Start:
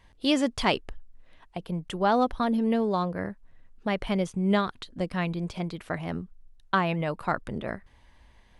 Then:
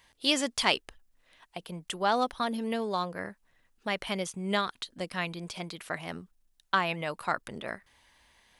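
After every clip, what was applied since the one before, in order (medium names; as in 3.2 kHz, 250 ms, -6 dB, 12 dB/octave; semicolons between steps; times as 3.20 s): tilt EQ +3 dB/octave; trim -2 dB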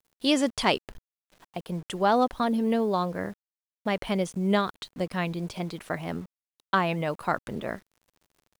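bit crusher 9-bit; tilt shelf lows +5.5 dB; trim +3 dB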